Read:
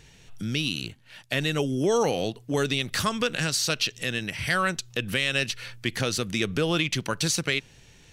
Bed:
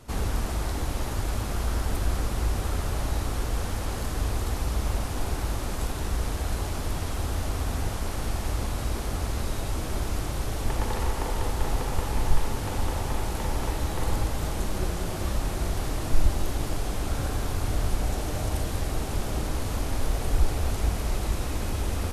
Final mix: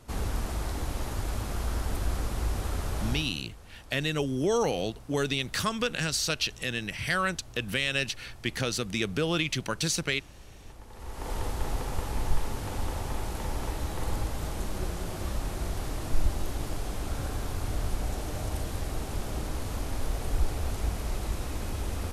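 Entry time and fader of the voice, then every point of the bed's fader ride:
2.60 s, -3.0 dB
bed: 3.12 s -3.5 dB
3.44 s -21 dB
10.88 s -21 dB
11.32 s -4.5 dB

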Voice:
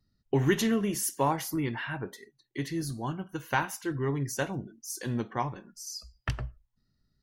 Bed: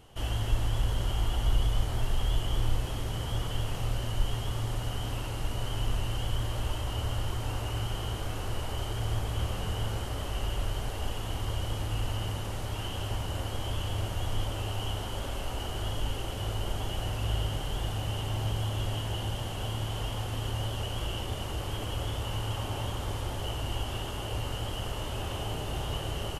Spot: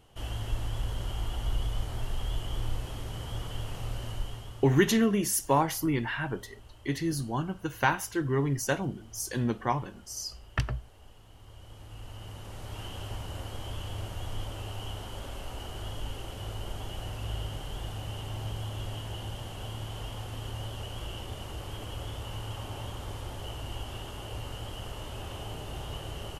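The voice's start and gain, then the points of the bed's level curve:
4.30 s, +2.5 dB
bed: 4.11 s -4.5 dB
5.07 s -20.5 dB
11.32 s -20.5 dB
12.79 s -5 dB

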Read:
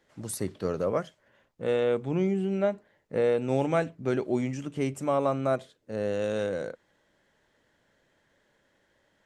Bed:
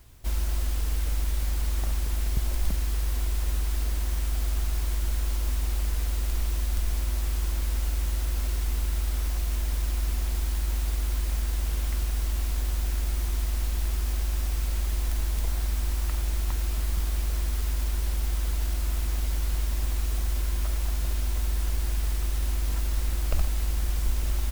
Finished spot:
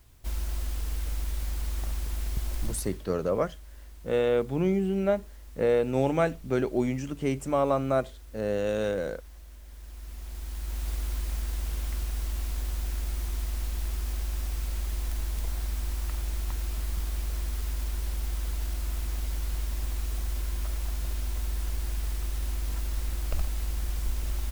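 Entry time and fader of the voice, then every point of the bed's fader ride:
2.45 s, +1.0 dB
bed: 2.64 s -4.5 dB
3.09 s -20 dB
9.63 s -20 dB
10.90 s -4 dB

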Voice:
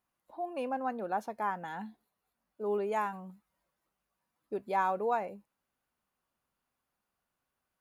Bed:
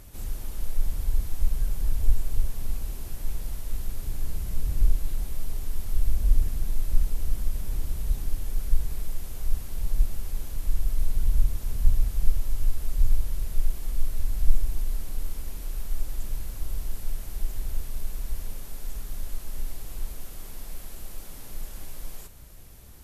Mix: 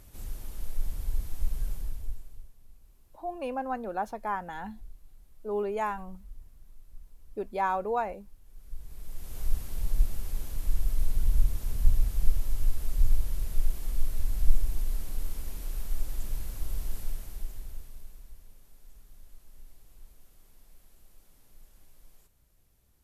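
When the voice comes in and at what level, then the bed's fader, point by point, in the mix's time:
2.85 s, +1.5 dB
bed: 1.72 s -5.5 dB
2.56 s -26 dB
8.41 s -26 dB
9.39 s -2 dB
16.99 s -2 dB
18.40 s -19 dB

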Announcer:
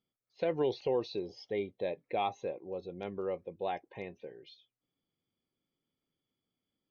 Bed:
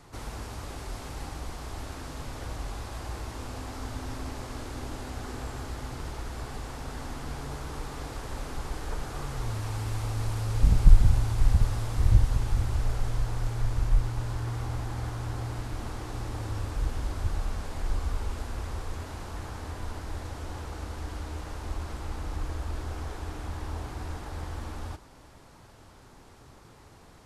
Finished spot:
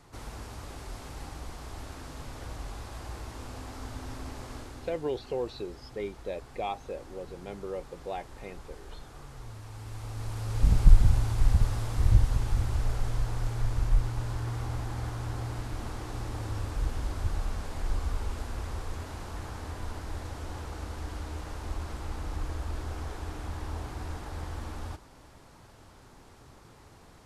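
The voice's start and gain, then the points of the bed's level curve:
4.45 s, -1.0 dB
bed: 4.55 s -3.5 dB
5.04 s -11.5 dB
9.68 s -11.5 dB
10.72 s -1 dB

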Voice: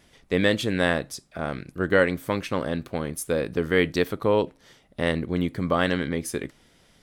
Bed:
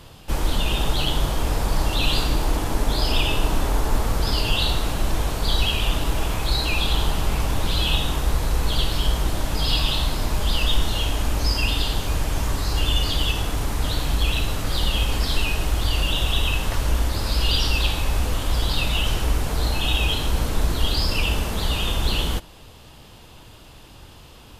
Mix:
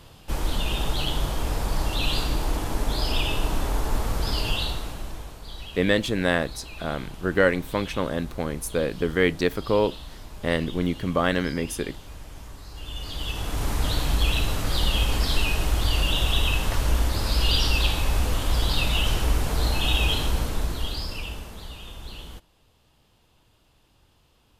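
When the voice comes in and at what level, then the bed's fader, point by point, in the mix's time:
5.45 s, 0.0 dB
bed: 4.50 s -4 dB
5.45 s -18 dB
12.73 s -18 dB
13.68 s -1 dB
20.20 s -1 dB
21.78 s -17 dB

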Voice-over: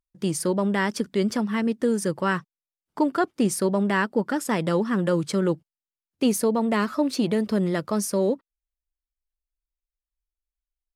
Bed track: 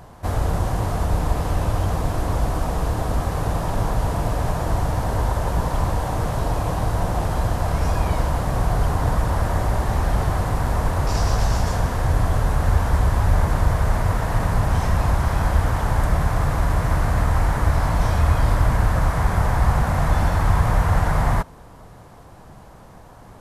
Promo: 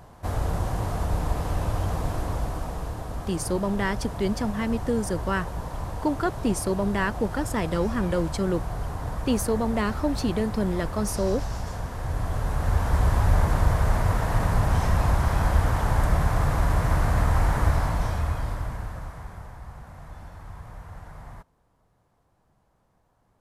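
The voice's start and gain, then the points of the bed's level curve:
3.05 s, -3.0 dB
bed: 2.12 s -5 dB
3.05 s -11 dB
11.89 s -11 dB
13.09 s -2.5 dB
17.66 s -2.5 dB
19.62 s -23.5 dB

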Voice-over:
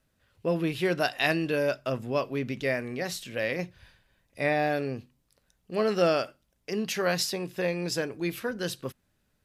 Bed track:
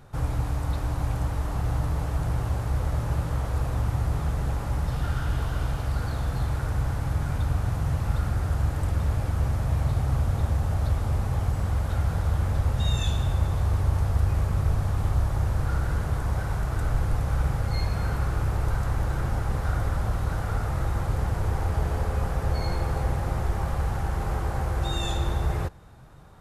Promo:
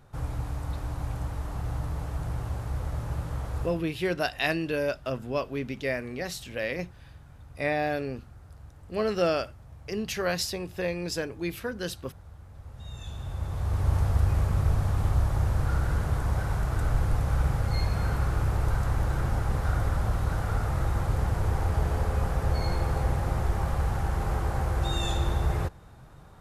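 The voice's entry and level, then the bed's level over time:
3.20 s, -1.5 dB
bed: 3.64 s -5.5 dB
3.87 s -23 dB
12.50 s -23 dB
13.92 s -0.5 dB

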